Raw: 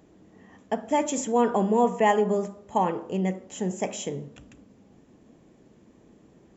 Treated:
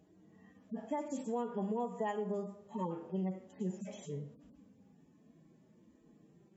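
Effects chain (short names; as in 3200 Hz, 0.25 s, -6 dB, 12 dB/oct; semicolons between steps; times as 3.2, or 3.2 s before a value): median-filter separation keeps harmonic; compressor 6:1, threshold -26 dBFS, peak gain reduction 10 dB; bell 160 Hz +6.5 dB 0.25 oct; gain -7.5 dB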